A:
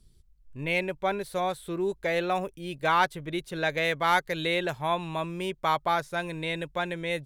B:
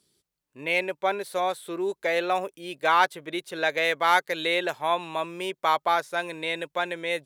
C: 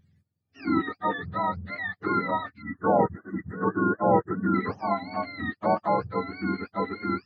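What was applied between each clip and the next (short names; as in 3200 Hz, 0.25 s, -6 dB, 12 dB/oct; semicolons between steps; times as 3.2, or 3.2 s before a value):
HPF 350 Hz 12 dB/oct; gain +3 dB
spectrum mirrored in octaves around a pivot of 840 Hz; spectral delete 2.62–4.55, 2000–6100 Hz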